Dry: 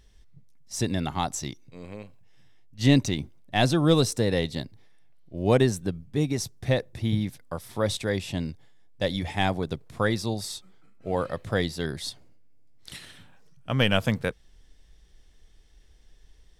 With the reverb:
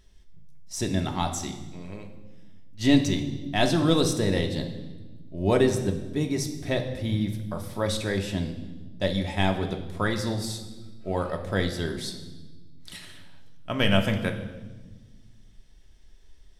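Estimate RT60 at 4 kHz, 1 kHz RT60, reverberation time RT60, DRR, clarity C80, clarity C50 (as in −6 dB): 1.1 s, 1.1 s, 1.2 s, 3.0 dB, 11.5 dB, 9.0 dB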